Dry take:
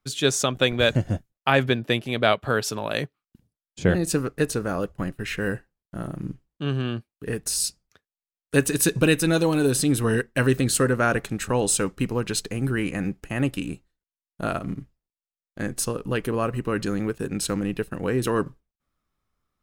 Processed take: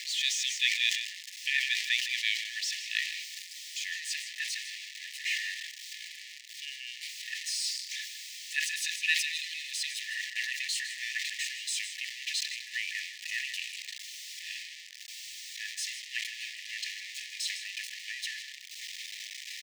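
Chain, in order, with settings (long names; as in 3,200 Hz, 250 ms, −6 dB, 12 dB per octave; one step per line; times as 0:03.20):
spike at every zero crossing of −16 dBFS
linear-phase brick-wall high-pass 1,700 Hz
high-frequency loss of the air 160 metres
on a send: single-tap delay 156 ms −11.5 dB
on the sum: level that may fall only so fast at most 67 dB per second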